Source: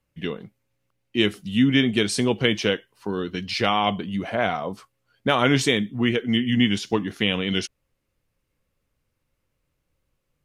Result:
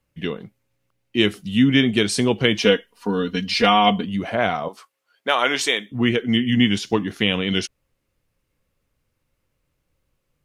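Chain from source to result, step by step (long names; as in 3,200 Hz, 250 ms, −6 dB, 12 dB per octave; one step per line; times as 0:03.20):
0:02.58–0:04.05: comb filter 4.2 ms, depth 90%
0:04.68–0:05.92: high-pass filter 550 Hz 12 dB per octave
level +2.5 dB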